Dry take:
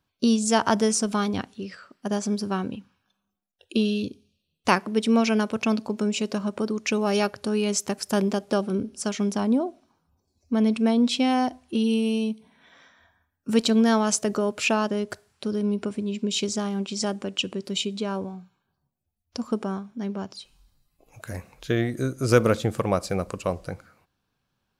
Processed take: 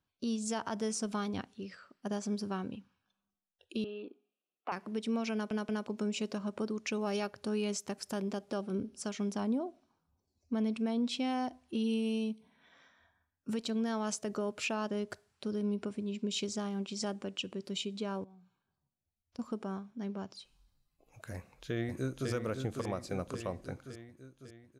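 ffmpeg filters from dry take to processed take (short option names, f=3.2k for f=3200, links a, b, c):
-filter_complex "[0:a]asettb=1/sr,asplit=3[a][b][c];[a]atrim=end=3.844[d];[b]atrim=start=3.84:end=4.72,asetpts=PTS-STARTPTS,afade=t=in:d=0.004:c=qsin,afade=t=out:st=0.876:d=0.004:c=qsin,highpass=f=320:w=0.5412,highpass=f=320:w=1.3066,equalizer=f=540:t=q:w=4:g=-5,equalizer=f=760:t=q:w=4:g=10,equalizer=f=1.3k:t=q:w=4:g=8,equalizer=f=1.9k:t=q:w=4:g=-8,lowpass=f=2.4k:w=0.5412,lowpass=f=2.4k:w=1.3066[e];[c]atrim=start=4.716[f];[d][e]acrossfade=d=0.004:c1=hsin:c2=qsin[g];[g][f]acrossfade=d=0.004:c1=qsin:c2=hsin,asettb=1/sr,asplit=3[h][i][j];[h]atrim=end=18.244[k];[i]atrim=start=18.24:end=19.39,asetpts=PTS-STARTPTS,afade=t=in:d=0.004:c=qsin,afade=t=out:st=1.146:d=0.004:c=qsin,acompressor=threshold=-50dB:ratio=3:attack=3.2:release=140:knee=1:detection=peak[l];[j]atrim=start=19.386[m];[k][l]acrossfade=d=0.004:c1=hsin:c2=qsin[n];[n][m]acrossfade=d=0.004:c1=qsin:c2=hsin,asplit=2[o][p];[p]afade=t=in:st=21.33:d=0.01,afade=t=out:st=22.3:d=0.01,aecho=0:1:550|1100|1650|2200|2750|3300|3850|4400:0.749894|0.412442|0.226843|0.124764|0.06862|0.037741|0.0207576|0.0114167[q];[o][q]amix=inputs=2:normalize=0,asplit=4[r][s][t][u];[r]atrim=end=5.512[v];[s]atrim=start=5.328:end=5.512[w];[t]atrim=start=5.328:end=5.512[x];[u]atrim=start=5.868[y];[v][w]acrossfade=d=0.004:c1=hsin:c2=hsin[z];[z][x]acrossfade=d=0.004:c1=hsin:c2=hsin[aa];[aa][y]acrossfade=d=0.004:c1=hsin:c2=hsin,highshelf=f=9.9k:g=-5.5,alimiter=limit=-16.5dB:level=0:latency=1:release=236,volume=-8.5dB"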